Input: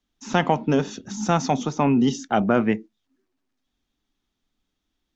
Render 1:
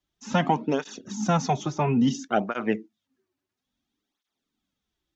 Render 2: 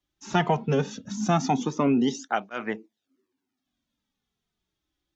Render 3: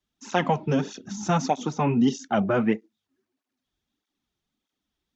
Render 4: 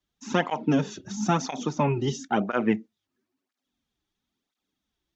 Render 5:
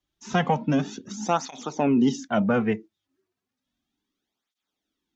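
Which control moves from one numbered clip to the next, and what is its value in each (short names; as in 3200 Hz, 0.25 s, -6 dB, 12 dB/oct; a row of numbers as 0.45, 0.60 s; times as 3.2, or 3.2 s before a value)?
tape flanging out of phase, nulls at: 0.59, 0.2, 1.6, 0.99, 0.33 Hz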